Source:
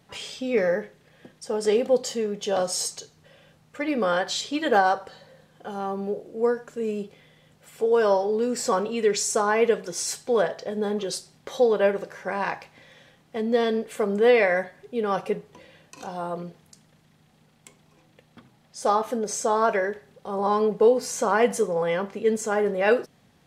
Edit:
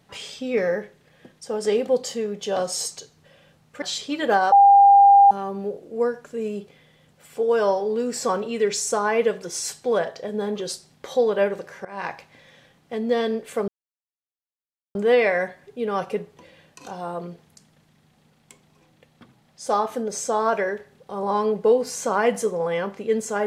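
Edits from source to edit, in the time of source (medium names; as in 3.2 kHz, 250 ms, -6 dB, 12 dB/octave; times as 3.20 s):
3.82–4.25 s: delete
4.95–5.74 s: bleep 800 Hz -8.5 dBFS
12.28–12.54 s: fade in, from -20.5 dB
14.11 s: insert silence 1.27 s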